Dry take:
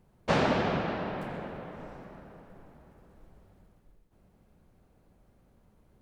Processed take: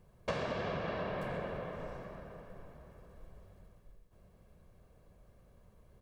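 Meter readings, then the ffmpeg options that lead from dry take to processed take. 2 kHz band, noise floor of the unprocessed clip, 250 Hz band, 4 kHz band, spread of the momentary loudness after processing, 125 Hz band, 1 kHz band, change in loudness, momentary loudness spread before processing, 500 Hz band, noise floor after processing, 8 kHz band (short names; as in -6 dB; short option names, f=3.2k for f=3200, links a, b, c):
-7.5 dB, -65 dBFS, -10.5 dB, -8.5 dB, 21 LU, -7.0 dB, -8.5 dB, -8.5 dB, 21 LU, -5.5 dB, -64 dBFS, n/a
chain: -af "aecho=1:1:1.8:0.47,acompressor=threshold=-33dB:ratio=10"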